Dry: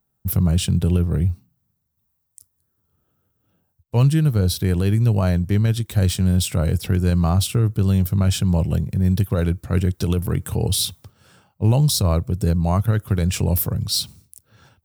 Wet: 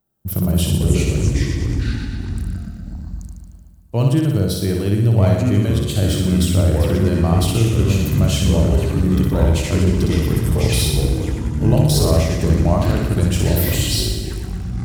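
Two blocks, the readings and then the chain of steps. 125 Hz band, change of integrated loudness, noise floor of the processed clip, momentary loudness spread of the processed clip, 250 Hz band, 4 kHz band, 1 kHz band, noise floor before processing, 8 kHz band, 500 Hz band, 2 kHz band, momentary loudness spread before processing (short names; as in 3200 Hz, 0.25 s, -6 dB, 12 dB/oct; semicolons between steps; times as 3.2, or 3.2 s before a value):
+2.5 dB, +2.5 dB, -36 dBFS, 11 LU, +4.0 dB, +2.5 dB, +3.0 dB, -72 dBFS, +2.0 dB, +6.0 dB, +6.0 dB, 5 LU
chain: small resonant body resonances 330/600/3100 Hz, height 8 dB, ringing for 25 ms; on a send: flutter echo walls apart 10.3 m, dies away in 1 s; on the sum: echoes that change speed 0.212 s, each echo -4 st, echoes 3; gain -2.5 dB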